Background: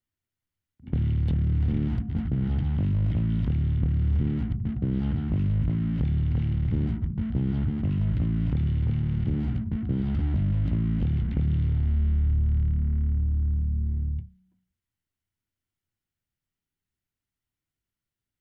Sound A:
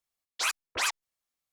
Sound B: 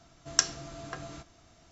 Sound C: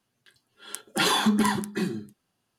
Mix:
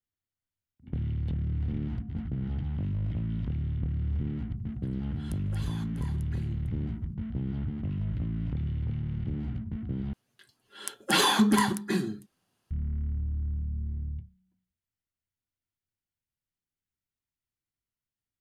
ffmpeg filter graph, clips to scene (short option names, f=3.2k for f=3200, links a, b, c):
-filter_complex "[3:a]asplit=2[a][b];[0:a]volume=-6.5dB[c];[a]acompressor=threshold=-36dB:ratio=6:attack=3.2:release=140:knee=1:detection=peak[d];[c]asplit=2[e][f];[e]atrim=end=10.134[g];[b]atrim=end=2.58[h];[f]atrim=start=12.706[i];[d]atrim=end=2.58,asetpts=PTS-STARTPTS,volume=-9dB,afade=t=in:d=0.004:c=hsin,afade=t=out:st=2.576:d=0.004:c=hsin,adelay=201537S[j];[g][h]acrossfade=d=0.004:c1=hsin:c2=hsin[k];[k][i]acrossfade=d=0.004:c1=hsin:c2=hsin[l];[l][j]amix=inputs=2:normalize=0"